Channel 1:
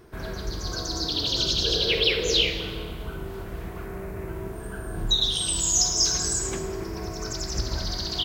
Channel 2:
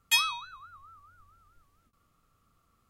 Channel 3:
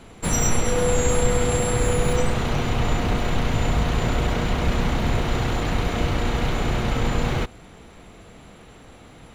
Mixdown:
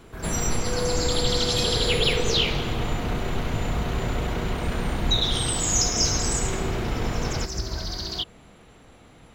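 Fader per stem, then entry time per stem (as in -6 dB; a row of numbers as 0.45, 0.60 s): -1.5, -13.5, -5.0 dB; 0.00, 1.45, 0.00 s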